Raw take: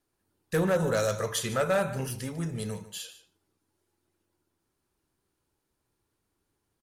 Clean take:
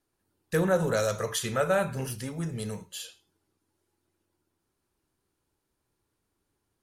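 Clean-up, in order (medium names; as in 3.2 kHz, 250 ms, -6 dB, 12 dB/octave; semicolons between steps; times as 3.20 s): clip repair -19.5 dBFS; inverse comb 148 ms -15.5 dB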